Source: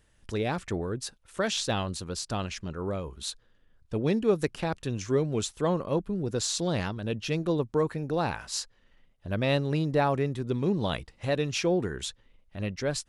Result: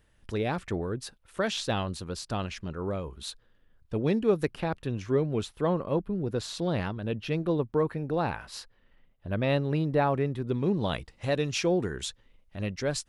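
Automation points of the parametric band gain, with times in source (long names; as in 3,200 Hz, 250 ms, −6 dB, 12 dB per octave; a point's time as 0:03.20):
parametric band 7,000 Hz 1.2 octaves
0:04.31 −6.5 dB
0:04.83 −14 dB
0:10.17 −14 dB
0:10.85 −6.5 dB
0:11.10 0 dB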